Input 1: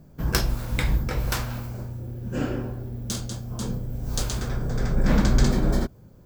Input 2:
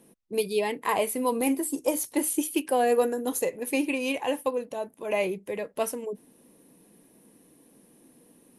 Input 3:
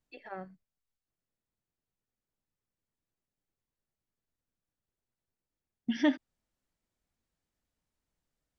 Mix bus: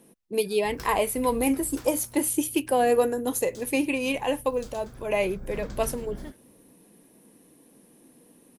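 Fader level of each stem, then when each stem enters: −18.0, +1.5, −18.5 decibels; 0.45, 0.00, 0.20 seconds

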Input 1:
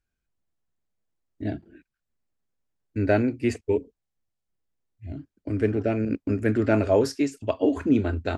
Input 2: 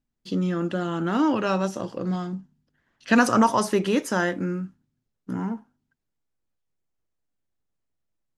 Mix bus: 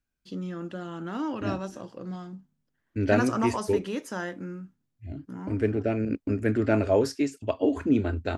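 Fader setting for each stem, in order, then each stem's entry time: −2.0, −9.5 decibels; 0.00, 0.00 seconds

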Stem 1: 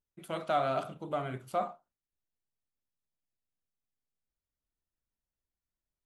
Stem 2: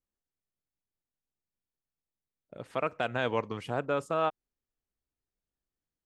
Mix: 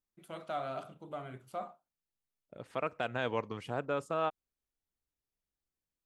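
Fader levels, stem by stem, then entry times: −8.0, −4.0 decibels; 0.00, 0.00 seconds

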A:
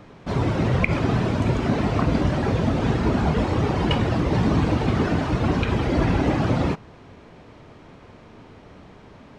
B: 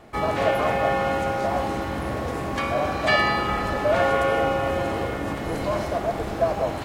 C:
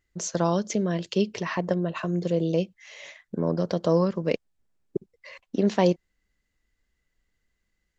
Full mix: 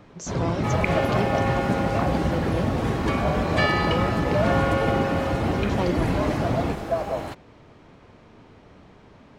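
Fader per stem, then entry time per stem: −4.0, −3.0, −5.5 decibels; 0.00, 0.50, 0.00 seconds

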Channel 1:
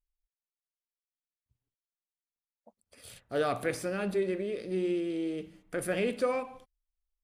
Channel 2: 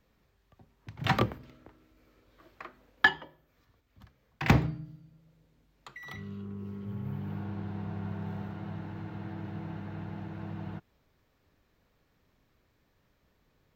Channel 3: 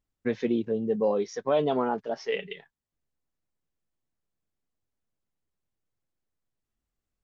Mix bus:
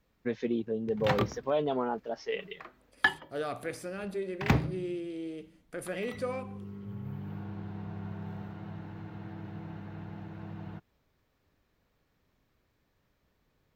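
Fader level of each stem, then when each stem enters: −5.5, −3.0, −4.5 decibels; 0.00, 0.00, 0.00 seconds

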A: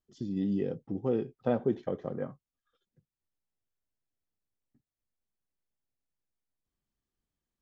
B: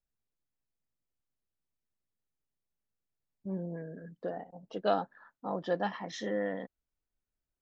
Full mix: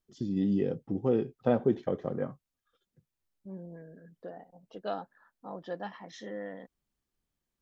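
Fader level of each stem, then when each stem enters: +2.5, −6.5 decibels; 0.00, 0.00 seconds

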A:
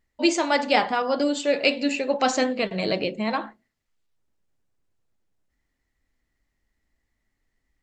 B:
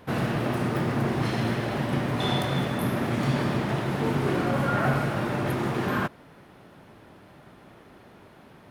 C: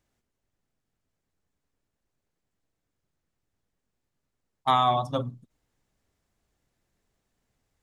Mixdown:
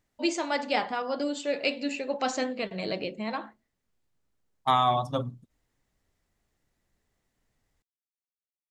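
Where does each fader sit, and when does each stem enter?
−7.0 dB, muted, −1.0 dB; 0.00 s, muted, 0.00 s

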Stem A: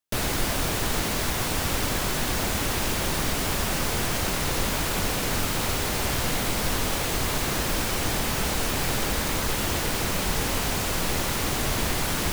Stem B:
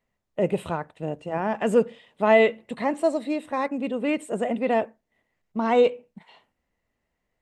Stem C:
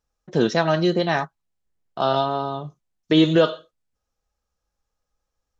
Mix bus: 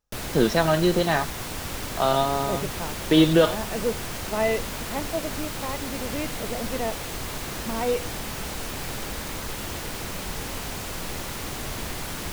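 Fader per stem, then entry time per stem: −6.5, −7.0, −1.0 decibels; 0.00, 2.10, 0.00 seconds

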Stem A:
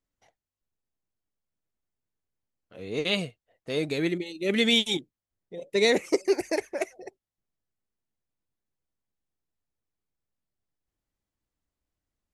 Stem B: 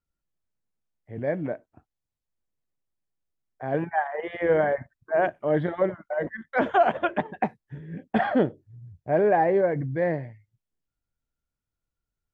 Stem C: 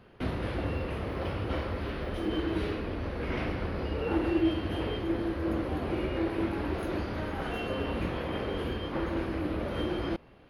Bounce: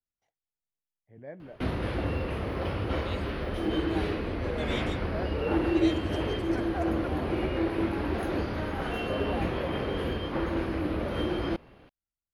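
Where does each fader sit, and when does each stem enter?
−17.0, −16.0, +2.0 decibels; 0.00, 0.00, 1.40 seconds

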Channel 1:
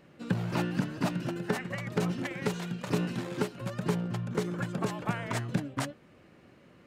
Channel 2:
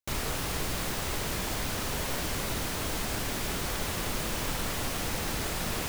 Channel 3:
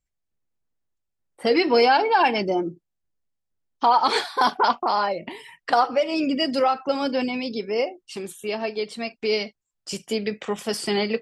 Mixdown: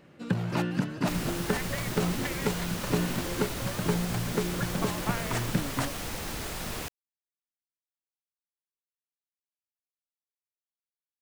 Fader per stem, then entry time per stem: +1.5 dB, −3.5 dB, muted; 0.00 s, 1.00 s, muted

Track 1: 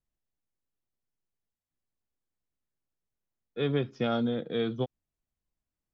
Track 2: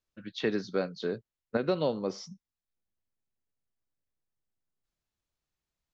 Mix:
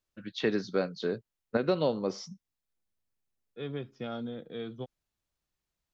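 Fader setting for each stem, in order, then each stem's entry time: −9.0, +1.0 decibels; 0.00, 0.00 seconds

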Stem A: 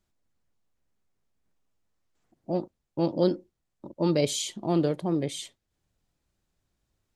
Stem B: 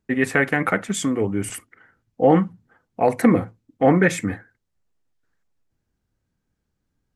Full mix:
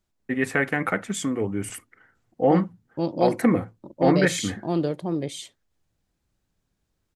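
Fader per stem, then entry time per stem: 0.0, −4.0 decibels; 0.00, 0.20 seconds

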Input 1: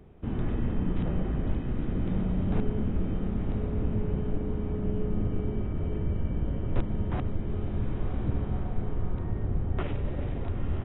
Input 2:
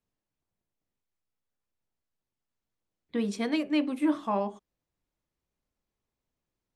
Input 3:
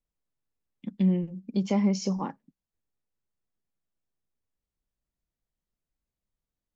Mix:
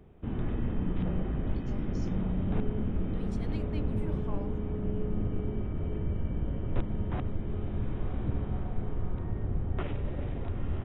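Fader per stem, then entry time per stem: −2.5, −16.0, −19.5 decibels; 0.00, 0.00, 0.00 seconds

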